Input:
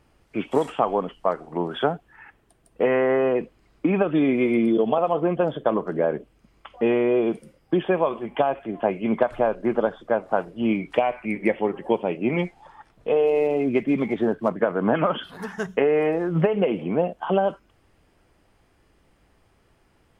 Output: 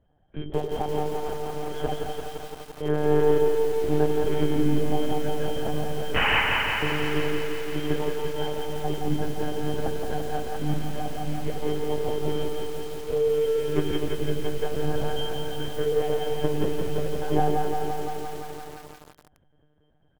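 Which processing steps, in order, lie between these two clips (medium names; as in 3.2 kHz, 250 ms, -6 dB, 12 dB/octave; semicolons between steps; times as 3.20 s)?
rattle on loud lows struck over -35 dBFS, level -19 dBFS; treble shelf 2.5 kHz +5.5 dB; pitch-class resonator G, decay 0.11 s; painted sound noise, 6.15–6.41 s, 720–3100 Hz -25 dBFS; in parallel at -6 dB: saturation -30 dBFS, distortion -8 dB; on the sum: doubling 13 ms -7 dB; two-band feedback delay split 590 Hz, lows 83 ms, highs 206 ms, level -4.5 dB; on a send at -21 dB: reverberation RT60 0.30 s, pre-delay 3 ms; on the sum: monotone LPC vocoder at 8 kHz 150 Hz; bit-crushed delay 171 ms, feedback 80%, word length 7-bit, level -5 dB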